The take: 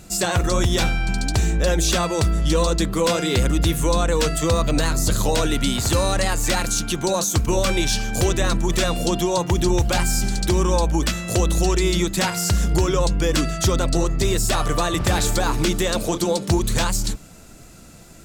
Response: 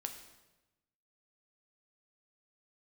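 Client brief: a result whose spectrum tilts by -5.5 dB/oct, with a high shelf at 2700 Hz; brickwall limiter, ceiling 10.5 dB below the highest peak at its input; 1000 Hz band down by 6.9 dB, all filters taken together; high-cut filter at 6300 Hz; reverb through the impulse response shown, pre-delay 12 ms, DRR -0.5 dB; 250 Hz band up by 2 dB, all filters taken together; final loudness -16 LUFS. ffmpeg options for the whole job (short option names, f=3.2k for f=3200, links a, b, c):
-filter_complex "[0:a]lowpass=6.3k,equalizer=f=250:t=o:g=4,equalizer=f=1k:t=o:g=-9,highshelf=f=2.7k:g=-4.5,alimiter=limit=-18.5dB:level=0:latency=1,asplit=2[a][b];[1:a]atrim=start_sample=2205,adelay=12[c];[b][c]afir=irnorm=-1:irlink=0,volume=2dB[d];[a][d]amix=inputs=2:normalize=0,volume=8dB"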